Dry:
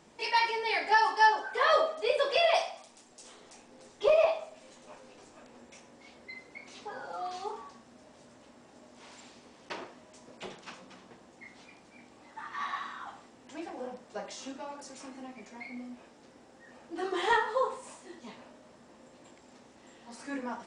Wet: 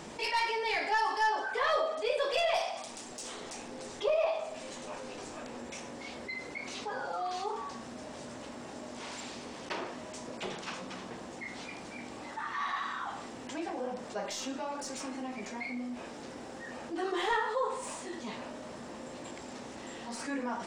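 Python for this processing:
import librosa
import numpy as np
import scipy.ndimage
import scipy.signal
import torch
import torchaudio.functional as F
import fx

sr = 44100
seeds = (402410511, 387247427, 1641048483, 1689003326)

y = fx.tracing_dist(x, sr, depth_ms=0.026)
y = fx.env_flatten(y, sr, amount_pct=50)
y = y * librosa.db_to_amplitude(-7.0)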